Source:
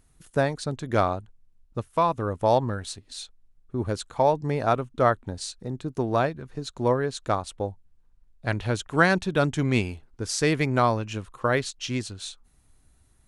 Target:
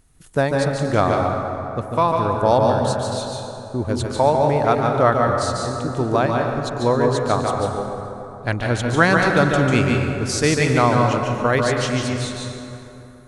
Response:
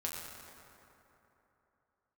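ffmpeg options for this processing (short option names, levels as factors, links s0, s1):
-filter_complex "[0:a]asplit=2[s0][s1];[1:a]atrim=start_sample=2205,adelay=145[s2];[s1][s2]afir=irnorm=-1:irlink=0,volume=0.794[s3];[s0][s3]amix=inputs=2:normalize=0,volume=1.58"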